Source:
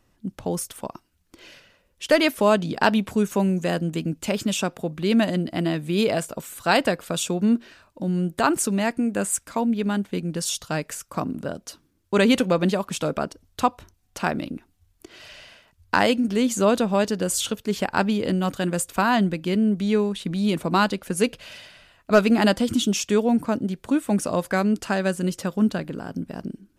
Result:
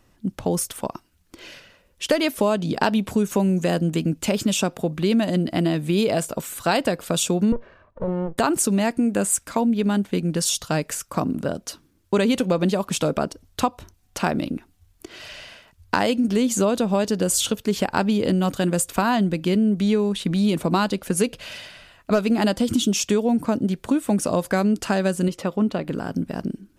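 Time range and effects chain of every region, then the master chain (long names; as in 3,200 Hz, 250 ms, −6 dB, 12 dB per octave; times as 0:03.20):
0:07.52–0:08.38: lower of the sound and its delayed copy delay 1.8 ms + low-pass filter 1,300 Hz
0:25.28–0:25.88: bass and treble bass −6 dB, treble −11 dB + notch filter 1,600 Hz, Q 5.4
whole clip: dynamic equaliser 1,700 Hz, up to −4 dB, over −36 dBFS, Q 0.86; downward compressor 6 to 1, threshold −21 dBFS; level +5 dB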